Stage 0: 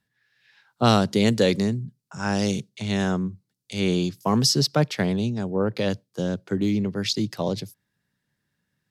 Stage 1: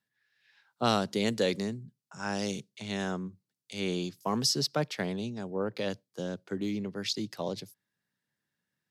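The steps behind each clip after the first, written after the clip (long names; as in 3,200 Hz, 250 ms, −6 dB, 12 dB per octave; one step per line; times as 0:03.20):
high-pass filter 250 Hz 6 dB per octave
level −6.5 dB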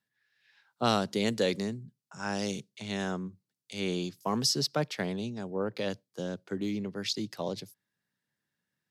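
no processing that can be heard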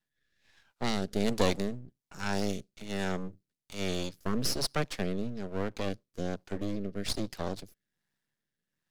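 half-wave rectification
rotating-speaker cabinet horn 1.2 Hz
level +5 dB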